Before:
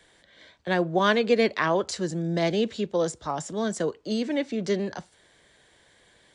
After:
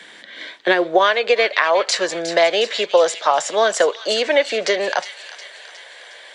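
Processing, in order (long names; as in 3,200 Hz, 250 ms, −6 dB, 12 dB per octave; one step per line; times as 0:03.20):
parametric band 2,300 Hz +13 dB 2.9 octaves
downward compressor 12 to 1, threshold −21 dBFS, peak gain reduction 14 dB
high-pass filter sweep 210 Hz → 570 Hz, 0:00.10–0:01.16
on a send: delay with a high-pass on its return 361 ms, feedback 55%, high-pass 2,300 Hz, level −9.5 dB
on the sum: level +7 dB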